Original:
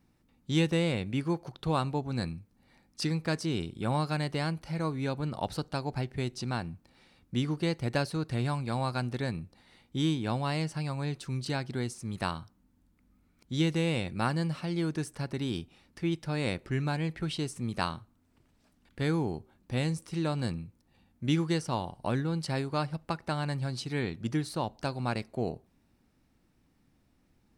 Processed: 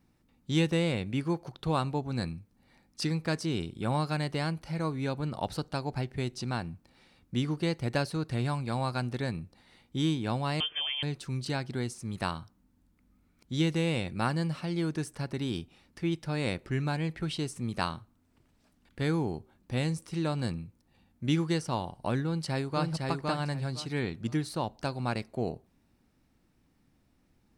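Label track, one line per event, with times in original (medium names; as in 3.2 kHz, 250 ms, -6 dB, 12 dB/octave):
10.600000	11.030000	frequency inversion carrier 3.3 kHz
22.250000	22.900000	echo throw 510 ms, feedback 20%, level -2.5 dB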